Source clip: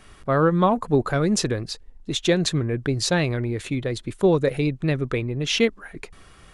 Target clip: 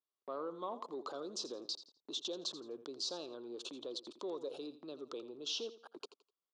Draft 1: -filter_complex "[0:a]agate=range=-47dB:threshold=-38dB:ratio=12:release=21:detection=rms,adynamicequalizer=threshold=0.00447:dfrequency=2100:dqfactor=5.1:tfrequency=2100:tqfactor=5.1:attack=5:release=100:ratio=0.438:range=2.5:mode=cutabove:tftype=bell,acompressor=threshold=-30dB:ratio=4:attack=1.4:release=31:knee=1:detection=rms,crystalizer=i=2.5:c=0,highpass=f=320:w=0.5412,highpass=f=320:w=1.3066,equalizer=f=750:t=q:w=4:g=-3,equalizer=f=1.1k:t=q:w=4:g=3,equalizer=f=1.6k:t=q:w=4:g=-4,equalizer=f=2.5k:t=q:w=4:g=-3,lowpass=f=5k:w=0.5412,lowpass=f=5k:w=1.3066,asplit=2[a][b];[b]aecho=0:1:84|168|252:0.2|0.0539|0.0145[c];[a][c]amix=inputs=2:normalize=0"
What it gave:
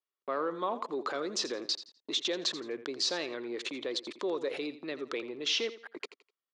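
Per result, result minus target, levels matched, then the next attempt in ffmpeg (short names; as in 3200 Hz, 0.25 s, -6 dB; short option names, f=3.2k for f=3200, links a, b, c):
2000 Hz band +10.5 dB; compressor: peak gain reduction -8.5 dB
-filter_complex "[0:a]agate=range=-47dB:threshold=-38dB:ratio=12:release=21:detection=rms,adynamicequalizer=threshold=0.00447:dfrequency=2100:dqfactor=5.1:tfrequency=2100:tqfactor=5.1:attack=5:release=100:ratio=0.438:range=2.5:mode=cutabove:tftype=bell,asuperstop=centerf=2000:order=4:qfactor=1,acompressor=threshold=-30dB:ratio=4:attack=1.4:release=31:knee=1:detection=rms,crystalizer=i=2.5:c=0,highpass=f=320:w=0.5412,highpass=f=320:w=1.3066,equalizer=f=750:t=q:w=4:g=-3,equalizer=f=1.1k:t=q:w=4:g=3,equalizer=f=1.6k:t=q:w=4:g=-4,equalizer=f=2.5k:t=q:w=4:g=-3,lowpass=f=5k:w=0.5412,lowpass=f=5k:w=1.3066,asplit=2[a][b];[b]aecho=0:1:84|168|252:0.2|0.0539|0.0145[c];[a][c]amix=inputs=2:normalize=0"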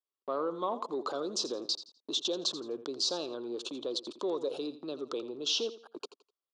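compressor: peak gain reduction -8.5 dB
-filter_complex "[0:a]agate=range=-47dB:threshold=-38dB:ratio=12:release=21:detection=rms,adynamicequalizer=threshold=0.00447:dfrequency=2100:dqfactor=5.1:tfrequency=2100:tqfactor=5.1:attack=5:release=100:ratio=0.438:range=2.5:mode=cutabove:tftype=bell,asuperstop=centerf=2000:order=4:qfactor=1,acompressor=threshold=-41.5dB:ratio=4:attack=1.4:release=31:knee=1:detection=rms,crystalizer=i=2.5:c=0,highpass=f=320:w=0.5412,highpass=f=320:w=1.3066,equalizer=f=750:t=q:w=4:g=-3,equalizer=f=1.1k:t=q:w=4:g=3,equalizer=f=1.6k:t=q:w=4:g=-4,equalizer=f=2.5k:t=q:w=4:g=-3,lowpass=f=5k:w=0.5412,lowpass=f=5k:w=1.3066,asplit=2[a][b];[b]aecho=0:1:84|168|252:0.2|0.0539|0.0145[c];[a][c]amix=inputs=2:normalize=0"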